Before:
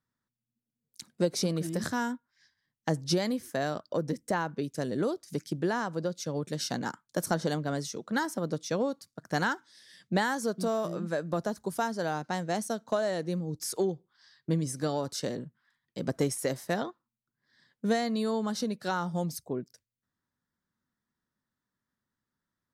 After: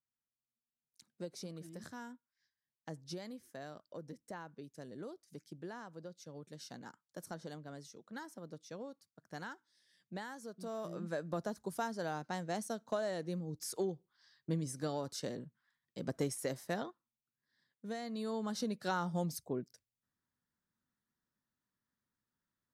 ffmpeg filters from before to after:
ffmpeg -i in.wav -af "volume=4.5dB,afade=type=in:start_time=10.57:duration=0.47:silence=0.334965,afade=type=out:start_time=16.78:duration=1.08:silence=0.354813,afade=type=in:start_time=17.86:duration=0.94:silence=0.251189" out.wav

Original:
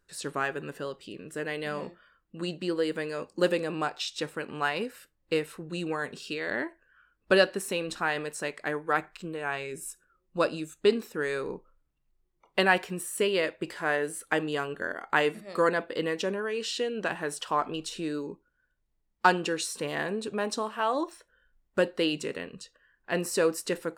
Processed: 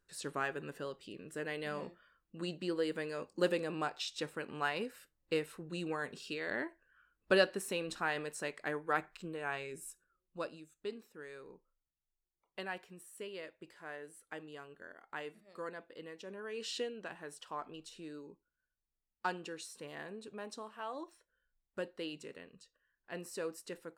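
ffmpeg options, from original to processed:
ffmpeg -i in.wav -af "volume=5.5dB,afade=type=out:start_time=9.52:duration=1.13:silence=0.237137,afade=type=in:start_time=16.25:duration=0.53:silence=0.251189,afade=type=out:start_time=16.78:duration=0.21:silence=0.398107" out.wav

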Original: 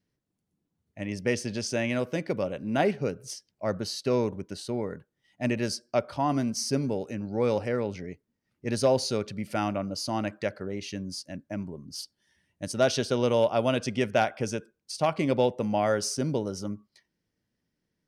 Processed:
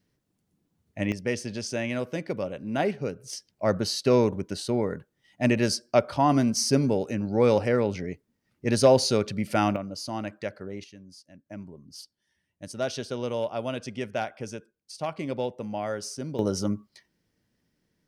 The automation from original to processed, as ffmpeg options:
ffmpeg -i in.wav -af "asetnsamples=nb_out_samples=441:pad=0,asendcmd='1.12 volume volume -1.5dB;3.33 volume volume 5dB;9.76 volume volume -3dB;10.84 volume volume -13dB;11.46 volume volume -6dB;16.39 volume volume 6.5dB',volume=6.5dB" out.wav

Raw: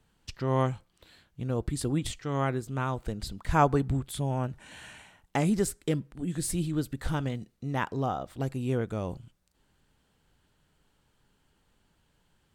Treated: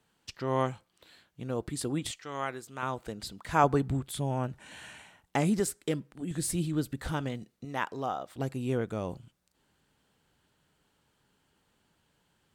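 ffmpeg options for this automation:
ffmpeg -i in.wav -af "asetnsamples=nb_out_samples=441:pad=0,asendcmd='2.11 highpass f 930;2.83 highpass f 300;3.64 highpass f 110;5.6 highpass f 250;6.31 highpass f 81;7.1 highpass f 180;7.65 highpass f 490;8.35 highpass f 130',highpass=frequency=250:poles=1" out.wav

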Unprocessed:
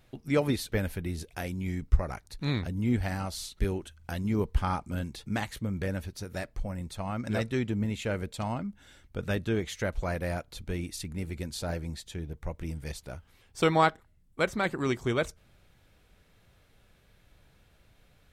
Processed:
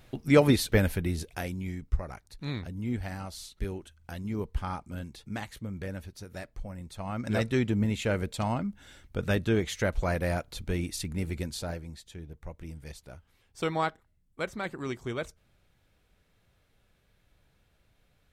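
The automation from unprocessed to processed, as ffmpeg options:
ffmpeg -i in.wav -af "volume=14dB,afade=type=out:start_time=0.78:duration=1.03:silence=0.281838,afade=type=in:start_time=6.87:duration=0.63:silence=0.398107,afade=type=out:start_time=11.35:duration=0.49:silence=0.354813" out.wav

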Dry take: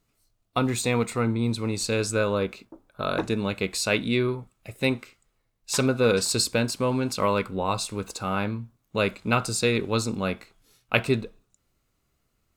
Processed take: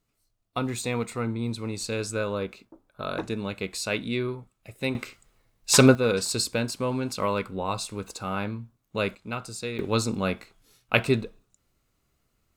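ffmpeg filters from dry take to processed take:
ffmpeg -i in.wav -af "asetnsamples=nb_out_samples=441:pad=0,asendcmd='4.95 volume volume 7.5dB;5.95 volume volume -3dB;9.15 volume volume -10dB;9.79 volume volume 0.5dB',volume=-4.5dB" out.wav

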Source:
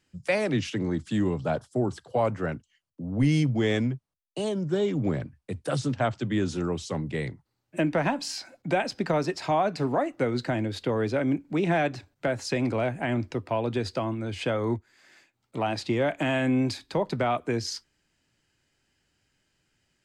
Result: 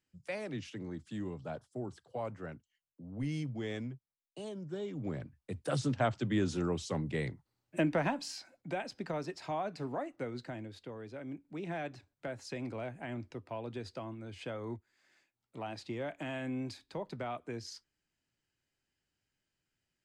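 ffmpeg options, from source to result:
ffmpeg -i in.wav -af "volume=2dB,afade=type=in:start_time=4.91:duration=0.94:silence=0.334965,afade=type=out:start_time=7.81:duration=0.72:silence=0.421697,afade=type=out:start_time=10.06:duration=0.97:silence=0.398107,afade=type=in:start_time=11.03:duration=0.93:silence=0.473151" out.wav

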